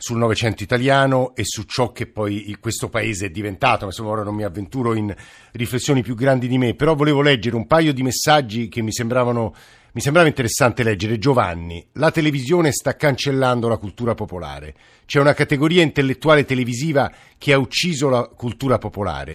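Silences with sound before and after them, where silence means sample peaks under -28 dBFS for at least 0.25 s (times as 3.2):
5.2–5.55
9.49–9.96
14.7–15.1
17.08–17.42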